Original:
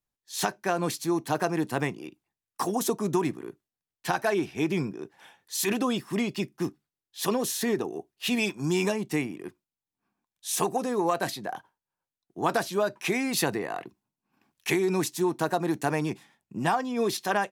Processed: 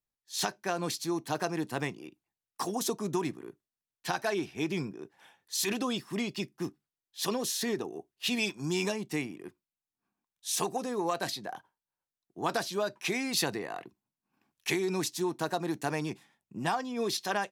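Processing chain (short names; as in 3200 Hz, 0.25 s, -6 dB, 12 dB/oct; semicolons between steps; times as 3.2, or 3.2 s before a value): dynamic EQ 4600 Hz, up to +7 dB, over -46 dBFS, Q 0.95; gain -5.5 dB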